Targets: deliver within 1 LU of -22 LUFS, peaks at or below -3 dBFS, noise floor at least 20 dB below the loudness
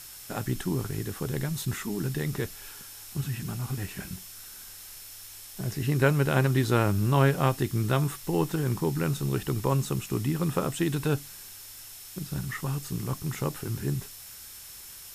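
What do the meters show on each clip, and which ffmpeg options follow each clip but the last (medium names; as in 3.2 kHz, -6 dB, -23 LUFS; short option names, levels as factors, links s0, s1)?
steady tone 5.4 kHz; tone level -54 dBFS; noise floor -45 dBFS; noise floor target -49 dBFS; loudness -29.0 LUFS; peak level -7.5 dBFS; loudness target -22.0 LUFS
-> -af "bandreject=f=5400:w=30"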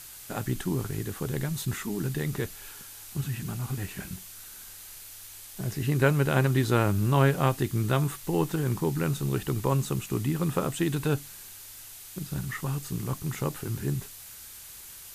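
steady tone not found; noise floor -46 dBFS; noise floor target -49 dBFS
-> -af "afftdn=nr=6:nf=-46"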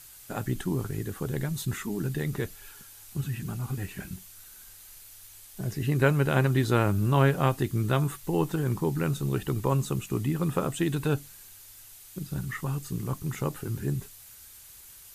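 noise floor -50 dBFS; loudness -29.0 LUFS; peak level -7.5 dBFS; loudness target -22.0 LUFS
-> -af "volume=2.24,alimiter=limit=0.708:level=0:latency=1"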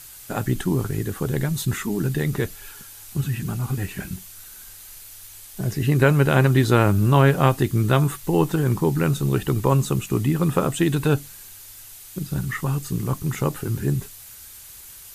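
loudness -22.0 LUFS; peak level -3.0 dBFS; noise floor -43 dBFS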